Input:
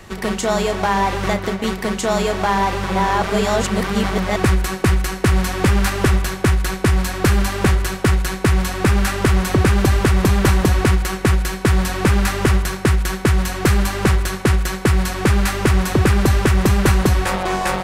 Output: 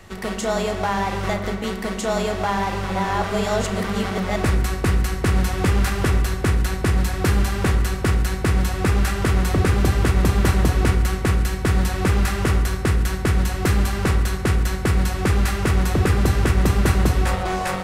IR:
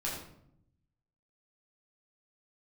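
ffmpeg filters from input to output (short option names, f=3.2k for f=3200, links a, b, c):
-filter_complex "[0:a]asplit=2[a][b];[1:a]atrim=start_sample=2205,asetrate=33957,aresample=44100[c];[b][c]afir=irnorm=-1:irlink=0,volume=-11dB[d];[a][d]amix=inputs=2:normalize=0,volume=-6.5dB"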